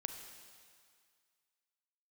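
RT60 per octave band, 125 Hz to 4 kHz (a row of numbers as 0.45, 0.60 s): 1.8, 1.9, 1.9, 2.1, 2.1, 2.1 s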